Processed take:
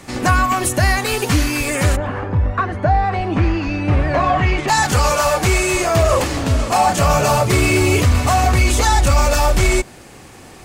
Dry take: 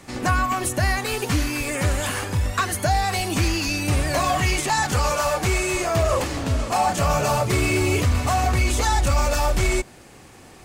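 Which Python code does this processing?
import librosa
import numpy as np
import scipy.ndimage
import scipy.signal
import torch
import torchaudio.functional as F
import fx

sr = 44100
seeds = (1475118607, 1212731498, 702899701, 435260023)

y = fx.lowpass(x, sr, hz=fx.line((1.95, 1100.0), (4.67, 2300.0)), slope=12, at=(1.95, 4.67), fade=0.02)
y = F.gain(torch.from_numpy(y), 6.0).numpy()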